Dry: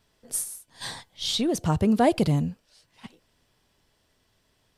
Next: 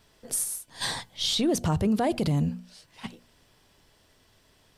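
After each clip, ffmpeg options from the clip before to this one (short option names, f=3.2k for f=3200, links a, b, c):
-filter_complex "[0:a]bandreject=f=60:t=h:w=6,bandreject=f=120:t=h:w=6,bandreject=f=180:t=h:w=6,bandreject=f=240:t=h:w=6,asplit=2[a][b];[b]acompressor=threshold=-32dB:ratio=6,volume=1dB[c];[a][c]amix=inputs=2:normalize=0,alimiter=limit=-17.5dB:level=0:latency=1:release=39"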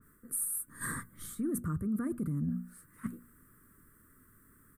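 -af "firequalizer=gain_entry='entry(100,0);entry(250,6);entry(790,-29);entry(1200,7);entry(1800,-2);entry(2800,-27);entry(5200,-25);entry(8600,4);entry(14000,12)':delay=0.05:min_phase=1,areverse,acompressor=threshold=-32dB:ratio=5,areverse,adynamicequalizer=threshold=0.002:dfrequency=1900:dqfactor=0.7:tfrequency=1900:tqfactor=0.7:attack=5:release=100:ratio=0.375:range=2.5:mode=cutabove:tftype=highshelf"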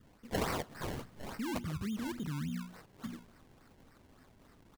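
-filter_complex "[0:a]acrossover=split=6700[a][b];[a]alimiter=level_in=9dB:limit=-24dB:level=0:latency=1:release=55,volume=-9dB[c];[c][b]amix=inputs=2:normalize=0,acrusher=samples=25:mix=1:aa=0.000001:lfo=1:lforange=25:lforate=3.5,asplit=2[d][e];[e]adelay=110.8,volume=-23dB,highshelf=f=4k:g=-2.49[f];[d][f]amix=inputs=2:normalize=0,volume=1dB"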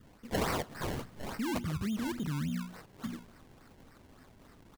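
-af "asoftclip=type=tanh:threshold=-27dB,volume=4dB"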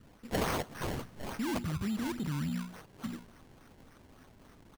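-af "acrusher=samples=6:mix=1:aa=0.000001"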